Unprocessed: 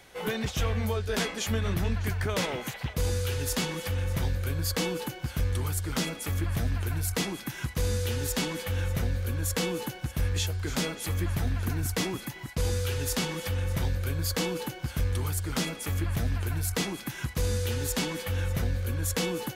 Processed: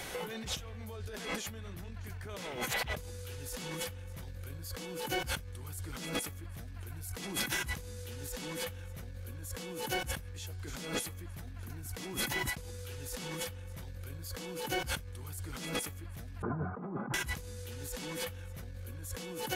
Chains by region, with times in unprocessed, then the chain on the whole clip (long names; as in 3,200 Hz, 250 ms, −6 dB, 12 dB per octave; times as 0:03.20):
0:16.42–0:17.14: Chebyshev band-pass filter 120–1,300 Hz, order 4 + comb filter 4.9 ms, depth 37%
whole clip: parametric band 11,000 Hz +4 dB 1.3 octaves; brickwall limiter −22 dBFS; compressor whose output falls as the input rises −42 dBFS, ratio −1; level +1 dB